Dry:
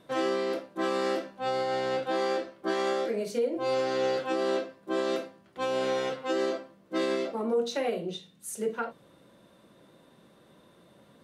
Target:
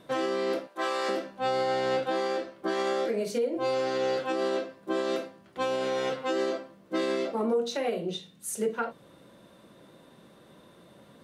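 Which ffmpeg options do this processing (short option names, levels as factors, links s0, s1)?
-filter_complex "[0:a]asettb=1/sr,asplit=3[s0][s1][s2];[s0]atrim=end=0.674[s3];[s1]atrim=start=0.67:end=1.09,asetpts=PTS-STARTPTS,afade=t=in:d=0.004:c=qsin,afade=t=out:st=0.416:d=0.004:c=qsin,highpass=570[s4];[s2]atrim=start=1.086[s5];[s3][s4]acrossfade=d=0.004:c1=hsin:c2=qsin[s6];[s6][s5]acrossfade=d=0.004:c1=qsin:c2=hsin,alimiter=limit=0.0708:level=0:latency=1:release=312,volume=1.5"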